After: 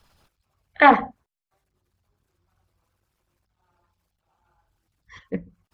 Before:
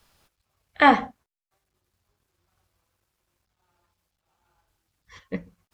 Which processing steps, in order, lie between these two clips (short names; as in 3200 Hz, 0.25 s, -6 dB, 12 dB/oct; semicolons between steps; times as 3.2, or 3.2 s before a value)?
formant sharpening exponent 1.5; Doppler distortion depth 0.18 ms; gain +2.5 dB